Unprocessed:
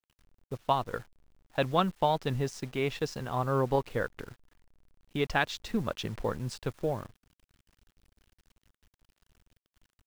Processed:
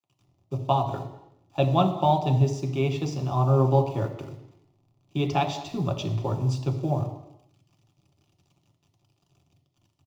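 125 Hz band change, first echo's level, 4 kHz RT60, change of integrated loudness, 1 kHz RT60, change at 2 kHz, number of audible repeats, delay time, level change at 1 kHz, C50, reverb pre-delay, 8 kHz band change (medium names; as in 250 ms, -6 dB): +11.5 dB, -20.0 dB, 0.85 s, +6.0 dB, 0.85 s, -6.0 dB, 1, 203 ms, +5.0 dB, 9.5 dB, 3 ms, +1.5 dB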